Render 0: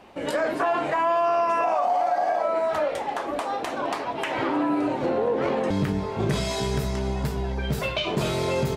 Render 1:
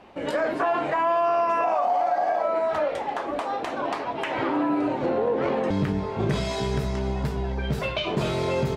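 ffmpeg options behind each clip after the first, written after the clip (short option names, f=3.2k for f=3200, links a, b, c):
-af "highshelf=f=7.2k:g=-12"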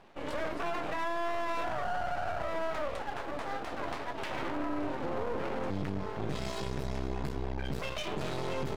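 -af "aeval=exprs='max(val(0),0)':c=same,alimiter=limit=-19.5dB:level=0:latency=1:release=21,volume=-4dB"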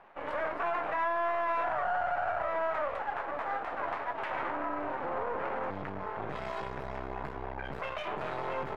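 -filter_complex "[0:a]acrossover=split=590 2200:gain=0.2 1 0.0708[a][b][c];[a][b][c]amix=inputs=3:normalize=0,volume=6dB"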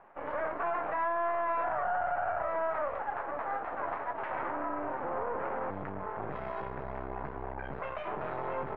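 -af "lowpass=1.8k"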